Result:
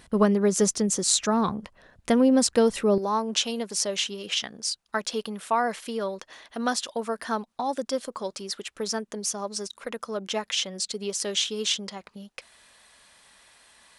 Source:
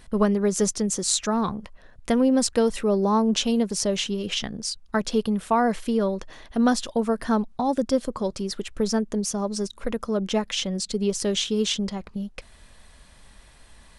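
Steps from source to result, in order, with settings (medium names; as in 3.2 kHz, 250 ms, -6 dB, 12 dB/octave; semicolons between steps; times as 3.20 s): high-pass 110 Hz 6 dB/octave, from 2.98 s 870 Hz; trim +1 dB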